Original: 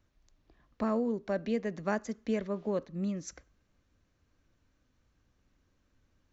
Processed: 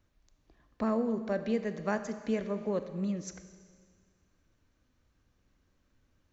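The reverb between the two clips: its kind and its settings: Schroeder reverb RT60 1.9 s, combs from 28 ms, DRR 10 dB

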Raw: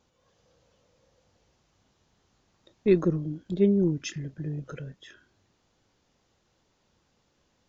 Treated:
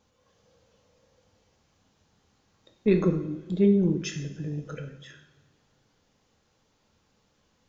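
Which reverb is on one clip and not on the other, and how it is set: two-slope reverb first 0.65 s, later 2.2 s, from -17 dB, DRR 4 dB

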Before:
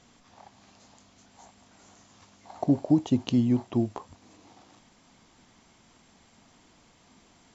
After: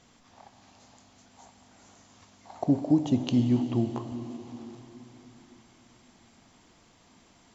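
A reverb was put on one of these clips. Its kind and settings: plate-style reverb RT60 4.3 s, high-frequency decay 0.95×, DRR 7.5 dB; trim -1 dB

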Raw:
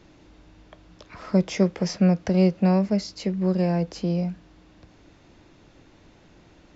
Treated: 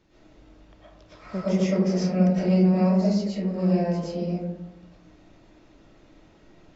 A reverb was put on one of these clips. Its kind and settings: algorithmic reverb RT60 1 s, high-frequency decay 0.3×, pre-delay 75 ms, DRR -9.5 dB; trim -11.5 dB

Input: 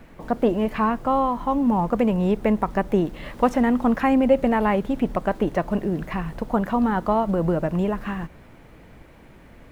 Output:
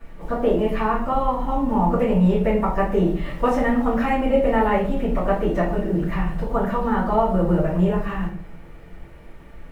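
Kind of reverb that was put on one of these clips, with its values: simulated room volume 51 m³, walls mixed, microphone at 2.6 m; trim -11.5 dB

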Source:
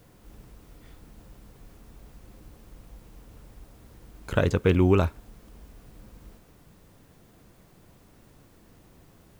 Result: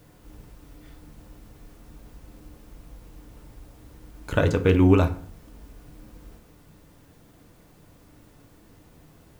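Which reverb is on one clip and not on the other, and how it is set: FDN reverb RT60 0.53 s, low-frequency decay 1.25×, high-frequency decay 0.65×, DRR 7 dB; trim +1 dB

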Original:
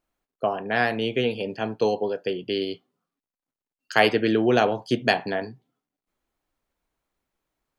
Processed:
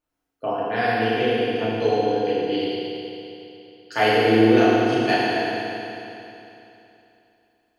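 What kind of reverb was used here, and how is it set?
FDN reverb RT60 3 s, high-frequency decay 1×, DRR -10 dB; trim -8 dB

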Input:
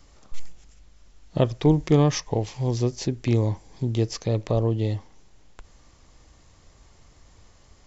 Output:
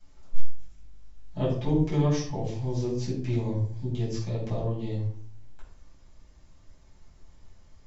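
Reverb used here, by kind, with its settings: simulated room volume 660 m³, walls furnished, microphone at 8.2 m; trim -17.5 dB

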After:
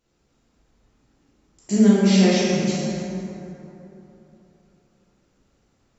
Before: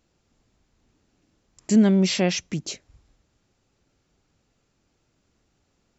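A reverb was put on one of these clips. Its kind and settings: plate-style reverb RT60 3.3 s, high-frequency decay 0.45×, DRR -9.5 dB; trim -6 dB

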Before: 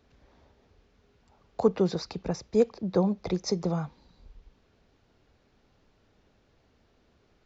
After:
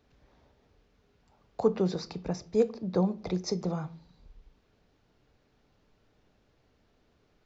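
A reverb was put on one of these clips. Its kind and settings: simulated room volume 330 m³, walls furnished, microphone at 0.42 m; trim -3 dB

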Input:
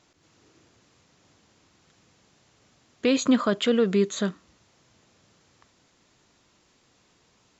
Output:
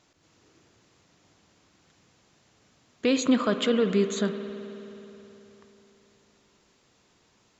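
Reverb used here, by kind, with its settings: spring tank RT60 3.5 s, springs 53 ms, chirp 40 ms, DRR 8.5 dB; trim -1.5 dB

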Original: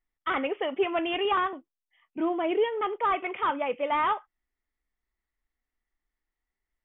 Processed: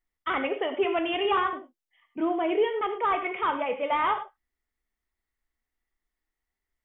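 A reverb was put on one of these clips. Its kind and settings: gated-style reverb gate 130 ms flat, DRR 7 dB

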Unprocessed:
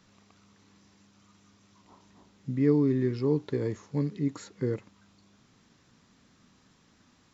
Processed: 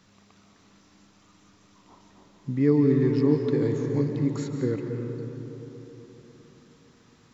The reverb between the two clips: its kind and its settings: algorithmic reverb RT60 3.8 s, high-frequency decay 0.35×, pre-delay 110 ms, DRR 3 dB; trim +2.5 dB

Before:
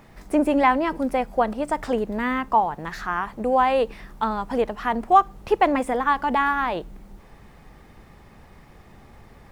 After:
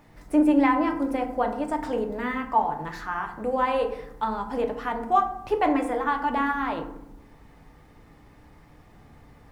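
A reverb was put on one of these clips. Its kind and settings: FDN reverb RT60 0.76 s, low-frequency decay 1.45×, high-frequency decay 0.45×, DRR 3 dB; trim -6 dB

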